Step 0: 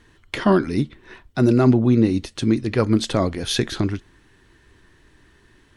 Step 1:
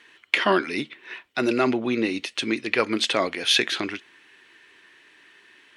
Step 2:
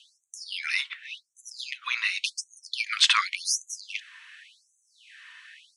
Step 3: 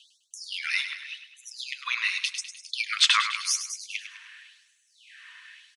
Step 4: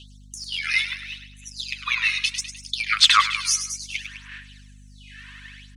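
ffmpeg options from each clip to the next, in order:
-af "highpass=360,equalizer=f=2500:w=1.1:g=13,volume=0.794"
-af "lowpass=f=9900:w=0.5412,lowpass=f=9900:w=1.3066,afftfilt=real='re*gte(b*sr/1024,900*pow(6100/900,0.5+0.5*sin(2*PI*0.89*pts/sr)))':imag='im*gte(b*sr/1024,900*pow(6100/900,0.5+0.5*sin(2*PI*0.89*pts/sr)))':win_size=1024:overlap=0.75,volume=1.78"
-af "aecho=1:1:102|204|306|408|510:0.316|0.158|0.0791|0.0395|0.0198"
-af "aphaser=in_gain=1:out_gain=1:delay=2.4:decay=0.57:speed=0.69:type=sinusoidal,aeval=exprs='val(0)+0.00355*(sin(2*PI*50*n/s)+sin(2*PI*2*50*n/s)/2+sin(2*PI*3*50*n/s)/3+sin(2*PI*4*50*n/s)/4+sin(2*PI*5*50*n/s)/5)':c=same,volume=1.41"

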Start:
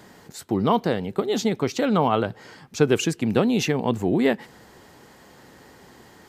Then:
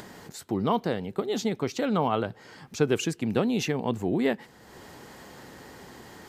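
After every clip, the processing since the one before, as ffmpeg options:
-af "acompressor=mode=upward:threshold=0.0251:ratio=2.5,volume=0.562"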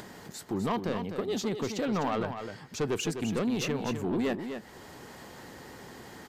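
-af "asoftclip=type=tanh:threshold=0.0708,aecho=1:1:253:0.398,volume=0.891"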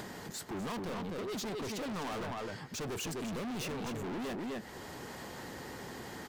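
-af "asoftclip=type=hard:threshold=0.0112,volume=1.26"

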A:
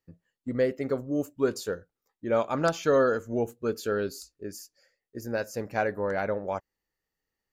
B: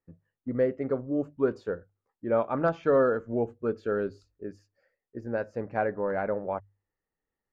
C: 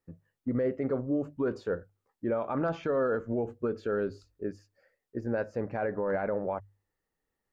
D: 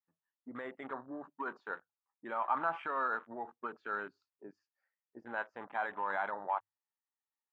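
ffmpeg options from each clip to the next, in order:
-af "lowpass=1600,bandreject=f=50:t=h:w=6,bandreject=f=100:t=h:w=6,bandreject=f=150:t=h:w=6"
-af "alimiter=level_in=1.12:limit=0.0631:level=0:latency=1:release=45,volume=0.891,volume=1.5"
-af "highpass=300,lowpass=4400,lowshelf=f=680:t=q:w=3:g=-10,afwtdn=0.00398"

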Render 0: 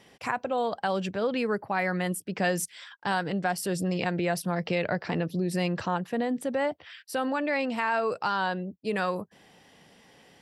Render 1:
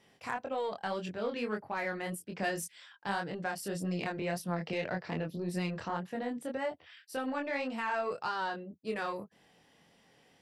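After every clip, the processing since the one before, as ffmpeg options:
-af "aeval=exprs='0.266*(cos(1*acos(clip(val(0)/0.266,-1,1)))-cos(1*PI/2))+0.0119*(cos(2*acos(clip(val(0)/0.266,-1,1)))-cos(2*PI/2))+0.0188*(cos(5*acos(clip(val(0)/0.266,-1,1)))-cos(5*PI/2))+0.0188*(cos(7*acos(clip(val(0)/0.266,-1,1)))-cos(7*PI/2))':c=same,flanger=delay=22.5:depth=2.9:speed=1.8,volume=0.631"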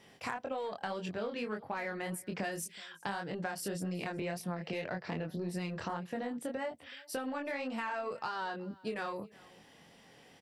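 -af "acompressor=threshold=0.01:ratio=6,aecho=1:1:374:0.0708,volume=1.88"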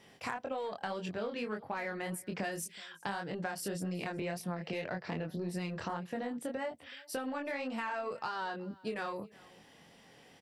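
-af anull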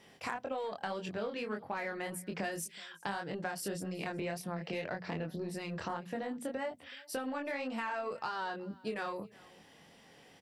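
-af "bandreject=f=60:t=h:w=6,bandreject=f=120:t=h:w=6,bandreject=f=180:t=h:w=6,bandreject=f=240:t=h:w=6"

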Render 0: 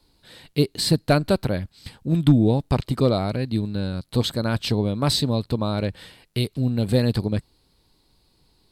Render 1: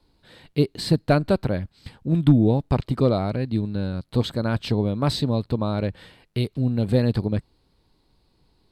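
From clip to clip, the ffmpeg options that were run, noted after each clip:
-af "highshelf=f=4000:g=-11.5"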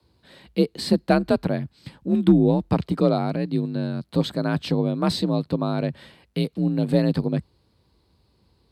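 -af "afreqshift=45"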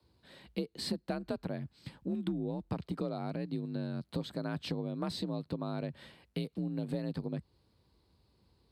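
-af "acompressor=threshold=0.0501:ratio=6,volume=0.473"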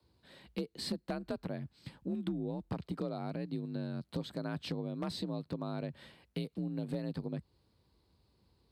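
-af "aeval=exprs='0.0596*(abs(mod(val(0)/0.0596+3,4)-2)-1)':c=same,volume=0.841"

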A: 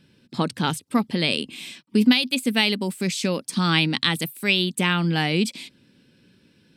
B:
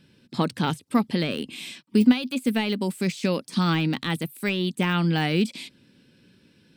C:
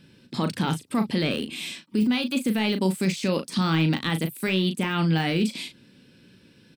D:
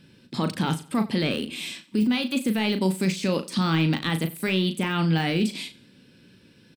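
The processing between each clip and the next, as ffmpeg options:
-af "deesser=0.75"
-filter_complex "[0:a]alimiter=limit=0.112:level=0:latency=1:release=10,asplit=2[s0][s1];[s1]adelay=37,volume=0.376[s2];[s0][s2]amix=inputs=2:normalize=0,volume=1.41"
-af "aecho=1:1:90|180|270:0.1|0.033|0.0109"

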